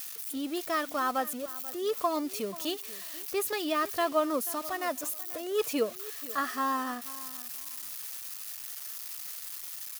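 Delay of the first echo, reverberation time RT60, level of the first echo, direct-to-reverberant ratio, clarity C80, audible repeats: 0.486 s, none, -17.5 dB, none, none, 2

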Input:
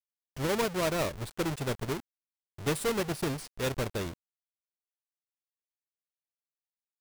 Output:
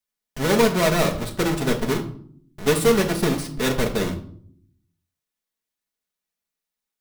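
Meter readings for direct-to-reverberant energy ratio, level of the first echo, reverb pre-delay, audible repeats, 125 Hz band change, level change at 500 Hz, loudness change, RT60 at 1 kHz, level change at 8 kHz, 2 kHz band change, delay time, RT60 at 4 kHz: 1.5 dB, none, 4 ms, none, +9.5 dB, +11.0 dB, +10.5 dB, 0.50 s, +9.5 dB, +10.0 dB, none, 0.40 s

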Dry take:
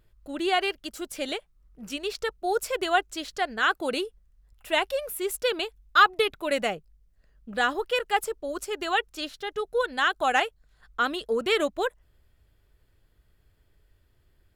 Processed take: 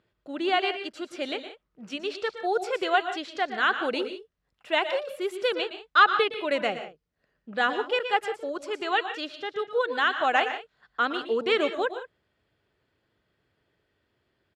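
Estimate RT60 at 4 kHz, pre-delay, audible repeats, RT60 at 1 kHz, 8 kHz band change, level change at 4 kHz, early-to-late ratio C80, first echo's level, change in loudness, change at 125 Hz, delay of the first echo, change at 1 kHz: none, none, 2, none, under -10 dB, -1.0 dB, none, -13.5 dB, 0.0 dB, n/a, 0.114 s, +0.5 dB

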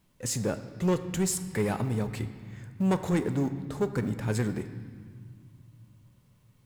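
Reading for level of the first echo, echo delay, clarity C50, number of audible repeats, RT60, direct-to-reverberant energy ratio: none, none, 11.5 dB, none, 1.9 s, 9.0 dB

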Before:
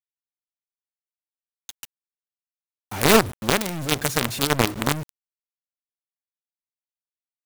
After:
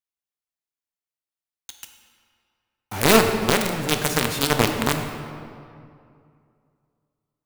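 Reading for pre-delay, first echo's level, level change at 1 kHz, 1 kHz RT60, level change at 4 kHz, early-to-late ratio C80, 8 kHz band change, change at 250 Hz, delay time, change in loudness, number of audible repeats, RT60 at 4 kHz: 13 ms, none, +1.5 dB, 2.4 s, +1.0 dB, 7.0 dB, +0.5 dB, +1.5 dB, none, +1.0 dB, none, 1.5 s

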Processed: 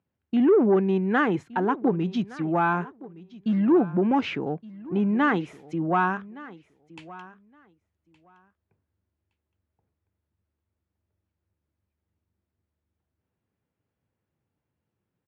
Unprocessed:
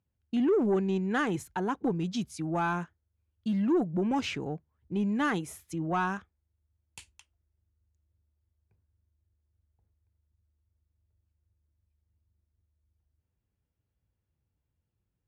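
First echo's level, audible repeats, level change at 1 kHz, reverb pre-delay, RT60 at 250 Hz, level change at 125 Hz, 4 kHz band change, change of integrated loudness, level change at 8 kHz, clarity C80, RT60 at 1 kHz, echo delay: -19.5 dB, 1, +7.0 dB, none, none, +4.5 dB, +0.5 dB, +6.0 dB, under -10 dB, none, none, 1.167 s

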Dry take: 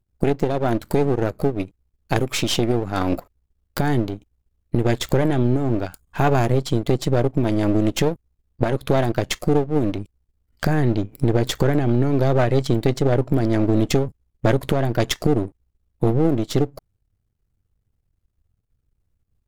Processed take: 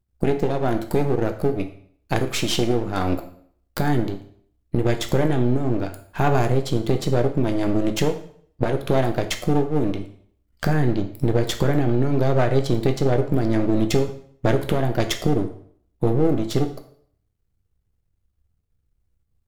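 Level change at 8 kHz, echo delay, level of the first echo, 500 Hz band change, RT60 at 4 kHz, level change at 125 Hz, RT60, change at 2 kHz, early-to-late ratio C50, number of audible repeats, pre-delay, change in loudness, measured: -1.5 dB, none, none, -1.0 dB, 0.55 s, -1.5 dB, 0.60 s, -1.0 dB, 11.0 dB, none, 5 ms, -1.5 dB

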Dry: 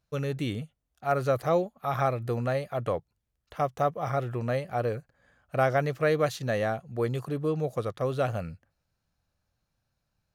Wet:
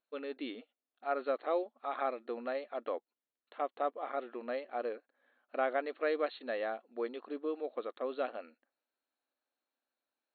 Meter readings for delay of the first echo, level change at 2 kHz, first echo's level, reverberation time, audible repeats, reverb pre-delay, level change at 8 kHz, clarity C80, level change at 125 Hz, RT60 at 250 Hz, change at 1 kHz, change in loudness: none, -7.5 dB, none, none, none, none, under -30 dB, none, under -40 dB, none, -7.5 dB, -8.5 dB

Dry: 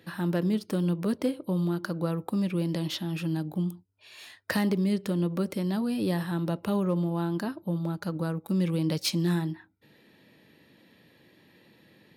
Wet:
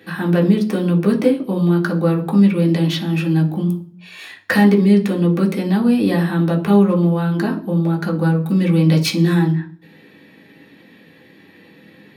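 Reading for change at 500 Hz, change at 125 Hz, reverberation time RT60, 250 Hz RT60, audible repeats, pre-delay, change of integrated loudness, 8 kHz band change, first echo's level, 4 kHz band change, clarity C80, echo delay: +12.5 dB, +13.0 dB, 0.45 s, 0.70 s, none, 3 ms, +12.5 dB, n/a, none, +8.5 dB, 18.0 dB, none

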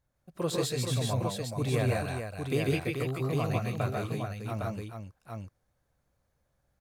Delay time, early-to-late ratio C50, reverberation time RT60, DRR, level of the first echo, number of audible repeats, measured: 78 ms, none, none, none, -18.5 dB, 5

